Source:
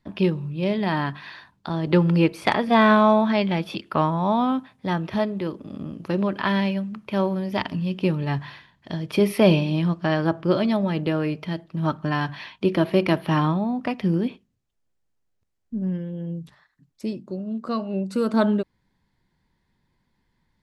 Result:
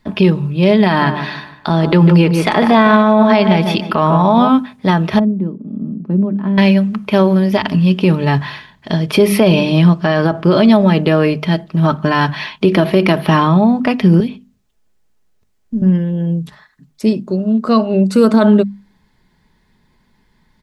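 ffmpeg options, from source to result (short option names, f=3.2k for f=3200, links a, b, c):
-filter_complex "[0:a]asplit=3[a][b][c];[a]afade=t=out:st=1:d=0.02[d];[b]asplit=2[e][f];[f]adelay=149,lowpass=f=1.9k:p=1,volume=-9dB,asplit=2[g][h];[h]adelay=149,lowpass=f=1.9k:p=1,volume=0.36,asplit=2[i][j];[j]adelay=149,lowpass=f=1.9k:p=1,volume=0.36,asplit=2[k][l];[l]adelay=149,lowpass=f=1.9k:p=1,volume=0.36[m];[e][g][i][k][m]amix=inputs=5:normalize=0,afade=t=in:st=1:d=0.02,afade=t=out:st=4.48:d=0.02[n];[c]afade=t=in:st=4.48:d=0.02[o];[d][n][o]amix=inputs=3:normalize=0,asettb=1/sr,asplit=3[p][q][r];[p]atrim=end=5.194[s];[q]atrim=start=5.19:end=6.58,asetpts=PTS-STARTPTS,afade=t=in:d=0.004:c=qsin,afade=t=out:st=1.386:d=0.004:c=qsin,bandpass=f=210:t=q:w=2.4[t];[r]atrim=start=6.576[u];[s][t]acrossfade=d=0.004:c1=hsin:c2=qsin[v];[v][u]acrossfade=d=0.004:c1=qsin:c2=hsin,asettb=1/sr,asplit=3[w][x][y];[w]atrim=end=14.204[z];[x]atrim=start=14.2:end=15.82,asetpts=PTS-STARTPTS,afade=t=in:d=0.004:c=qsin,afade=t=out:st=1.616:d=0.004:c=qsin,acrossover=split=200|2500[aa][ab][ac];[aa]acompressor=threshold=-34dB:ratio=4[ad];[ab]acompressor=threshold=-38dB:ratio=4[ae];[ac]acompressor=threshold=-53dB:ratio=4[af];[ad][ae][af]amix=inputs=3:normalize=0[ag];[y]atrim=start=15.816[ah];[z][ag]acrossfade=d=0.004:c1=hsin:c2=qsin[ai];[ai][ah]acrossfade=d=0.004:c1=qsin:c2=hsin,bandreject=f=50:t=h:w=6,bandreject=f=100:t=h:w=6,bandreject=f=150:t=h:w=6,bandreject=f=200:t=h:w=6,bandreject=f=250:t=h:w=6,aecho=1:1:4.7:0.32,alimiter=level_in=14dB:limit=-1dB:release=50:level=0:latency=1,volume=-1dB"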